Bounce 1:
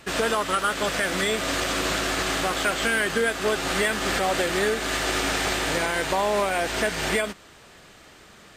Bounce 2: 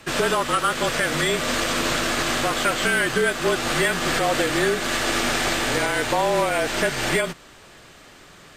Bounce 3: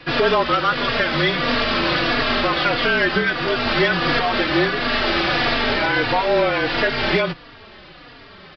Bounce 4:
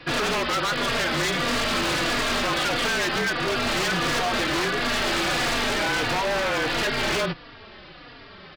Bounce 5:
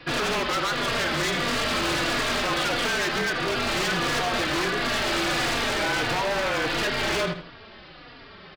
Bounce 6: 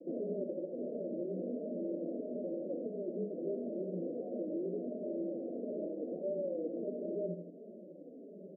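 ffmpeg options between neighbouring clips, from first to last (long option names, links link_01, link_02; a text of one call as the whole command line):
ffmpeg -i in.wav -af "afreqshift=-33,volume=2.5dB" out.wav
ffmpeg -i in.wav -filter_complex "[0:a]aresample=11025,aeval=exprs='0.355*sin(PI/2*1.58*val(0)/0.355)':channel_layout=same,aresample=44100,asplit=2[link_01][link_02];[link_02]adelay=3.6,afreqshift=-1.5[link_03];[link_01][link_03]amix=inputs=2:normalize=1" out.wav
ffmpeg -i in.wav -af "aeval=exprs='0.141*(abs(mod(val(0)/0.141+3,4)-2)-1)':channel_layout=same,volume=-2dB" out.wav
ffmpeg -i in.wav -filter_complex "[0:a]asplit=2[link_01][link_02];[link_02]adelay=80,lowpass=frequency=4600:poles=1,volume=-9dB,asplit=2[link_03][link_04];[link_04]adelay=80,lowpass=frequency=4600:poles=1,volume=0.29,asplit=2[link_05][link_06];[link_06]adelay=80,lowpass=frequency=4600:poles=1,volume=0.29[link_07];[link_01][link_03][link_05][link_07]amix=inputs=4:normalize=0,volume=-1.5dB" out.wav
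ffmpeg -i in.wav -af "acompressor=threshold=-34dB:ratio=3,asuperpass=centerf=330:order=20:qfactor=0.74,volume=1dB" out.wav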